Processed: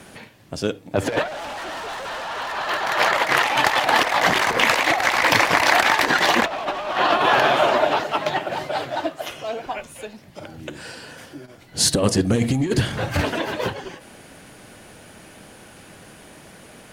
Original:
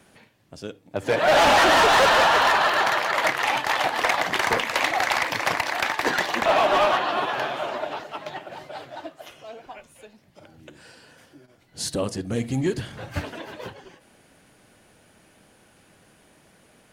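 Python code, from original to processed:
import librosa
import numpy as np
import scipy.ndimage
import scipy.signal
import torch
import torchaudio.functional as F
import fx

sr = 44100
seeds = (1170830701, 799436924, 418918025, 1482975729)

y = fx.fold_sine(x, sr, drive_db=4, ceiling_db=-8.5)
y = fx.over_compress(y, sr, threshold_db=-19.0, ratio=-0.5)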